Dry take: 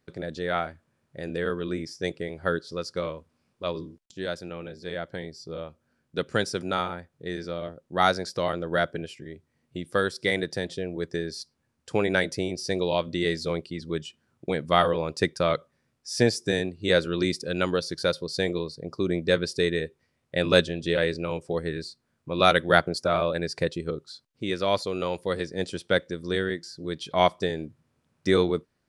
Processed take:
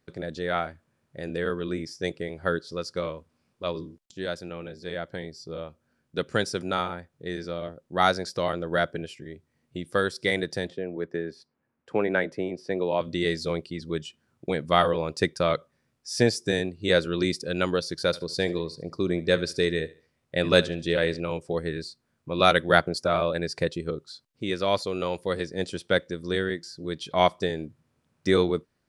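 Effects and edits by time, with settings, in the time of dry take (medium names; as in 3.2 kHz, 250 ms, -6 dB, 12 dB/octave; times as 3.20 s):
10.70–13.01 s: three-band isolator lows -12 dB, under 160 Hz, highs -20 dB, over 2.5 kHz
18.06–21.20 s: feedback delay 72 ms, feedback 30%, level -19 dB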